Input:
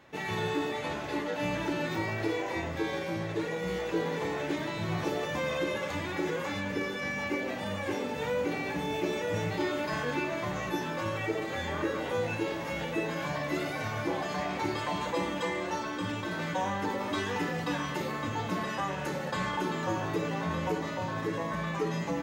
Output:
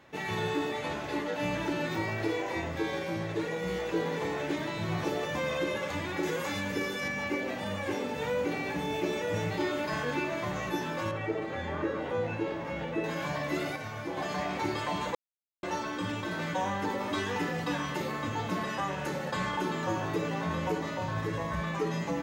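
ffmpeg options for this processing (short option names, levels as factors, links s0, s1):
-filter_complex "[0:a]asettb=1/sr,asplit=3[s0][s1][s2];[s0]atrim=end=6.234[s3];[s1]atrim=start=6.23:end=7.08,asetpts=PTS-STARTPTS,afade=t=in:d=0.004:c=qsin,afade=t=out:st=0.846:d=0.004:c=qsin,highshelf=f=5500:g=9.5[s4];[s2]atrim=start=7.076[s5];[s3][s4]acrossfade=d=0.004:c1=hsin:c2=qsin[s6];[s6][s5]acrossfade=d=0.004:c1=qsin:c2=hsin,asettb=1/sr,asplit=3[s7][s8][s9];[s7]atrim=end=11.114[s10];[s8]atrim=start=11.11:end=13.04,asetpts=PTS-STARTPTS,afade=t=in:d=0.004:c=qsin,afade=t=out:st=1.926:d=0.004:c=qsin,lowpass=f=1800:p=1[s11];[s9]atrim=start=13.036[s12];[s10][s11]acrossfade=d=0.004:c1=hsin:c2=qsin[s13];[s13][s12]acrossfade=d=0.004:c1=qsin:c2=hsin,asplit=3[s14][s15][s16];[s14]afade=t=out:st=21.05:d=0.02[s17];[s15]asubboost=boost=5:cutoff=100,afade=t=in:st=21.05:d=0.02,afade=t=out:st=21.6:d=0.02[s18];[s16]afade=t=in:st=21.6:d=0.02[s19];[s17][s18][s19]amix=inputs=3:normalize=0,asplit=5[s20][s21][s22][s23][s24];[s20]atrim=end=13.762[s25];[s21]atrim=start=13.758:end=14.172,asetpts=PTS-STARTPTS,volume=0.562[s26];[s22]atrim=start=14.168:end=15.15,asetpts=PTS-STARTPTS,afade=t=out:st=0.978:d=0.004:c=hsin[s27];[s23]atrim=start=15.15:end=15.63,asetpts=PTS-STARTPTS,volume=0[s28];[s24]atrim=start=15.63,asetpts=PTS-STARTPTS,afade=t=in:d=0.004:c=hsin[s29];[s25][s26]acrossfade=d=0.004:c1=hsin:c2=hsin[s30];[s27][s28][s29]concat=n=3:v=0:a=1[s31];[s30][s31]acrossfade=d=0.004:c1=hsin:c2=hsin"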